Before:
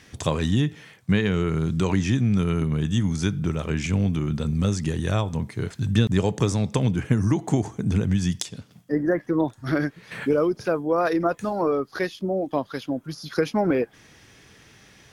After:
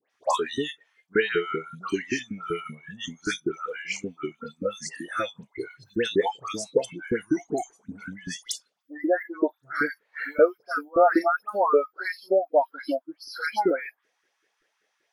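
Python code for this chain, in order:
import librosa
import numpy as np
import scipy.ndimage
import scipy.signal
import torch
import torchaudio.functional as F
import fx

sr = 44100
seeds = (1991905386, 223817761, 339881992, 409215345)

y = fx.filter_lfo_highpass(x, sr, shape='saw_up', hz=5.2, low_hz=360.0, high_hz=1700.0, q=3.0)
y = fx.dispersion(y, sr, late='highs', ms=106.0, hz=1900.0)
y = fx.noise_reduce_blind(y, sr, reduce_db=23)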